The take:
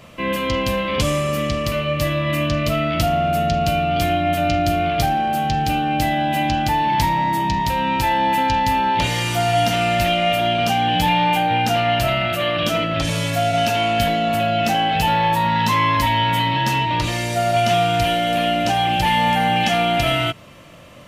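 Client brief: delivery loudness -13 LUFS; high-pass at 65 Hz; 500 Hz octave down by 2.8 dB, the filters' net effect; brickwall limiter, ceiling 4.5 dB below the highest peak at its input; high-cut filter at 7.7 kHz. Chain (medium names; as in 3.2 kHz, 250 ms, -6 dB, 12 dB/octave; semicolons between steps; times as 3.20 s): high-pass 65 Hz; low-pass 7.7 kHz; peaking EQ 500 Hz -4.5 dB; trim +7.5 dB; peak limiter -4 dBFS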